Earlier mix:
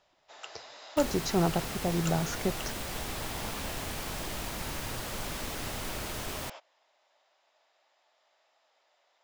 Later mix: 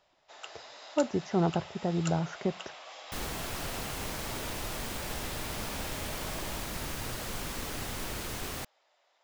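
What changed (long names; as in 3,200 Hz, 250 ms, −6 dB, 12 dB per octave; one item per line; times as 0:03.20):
speech: add moving average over 11 samples
second sound: entry +2.15 s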